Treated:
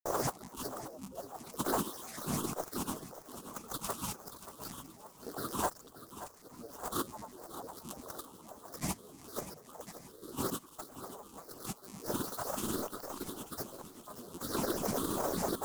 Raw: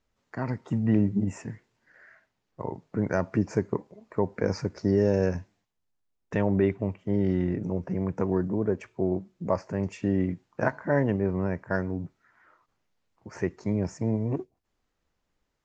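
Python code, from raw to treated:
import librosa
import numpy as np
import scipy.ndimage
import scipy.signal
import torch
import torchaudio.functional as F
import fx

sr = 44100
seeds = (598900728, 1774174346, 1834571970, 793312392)

y = x + 0.5 * 10.0 ** (-22.0 / 20.0) * np.diff(np.sign(x), prepend=np.sign(x[:1]))
y = fx.spec_gate(y, sr, threshold_db=-15, keep='weak')
y = fx.curve_eq(y, sr, hz=(150.0, 220.0, 380.0, 890.0, 1300.0, 2600.0, 3900.0, 6200.0, 11000.0), db=(0, 5, 8, -18, -4, -16, 10, 1, 8))
y = fx.over_compress(y, sr, threshold_db=-45.0, ratio=-0.5)
y = fx.granulator(y, sr, seeds[0], grain_ms=100.0, per_s=20.0, spray_ms=100.0, spread_st=12)
y = fx.high_shelf_res(y, sr, hz=1700.0, db=-11.5, q=3.0)
y = fx.echo_feedback(y, sr, ms=580, feedback_pct=39, wet_db=-13.0)
y = fx.doppler_dist(y, sr, depth_ms=0.22)
y = y * librosa.db_to_amplitude(16.0)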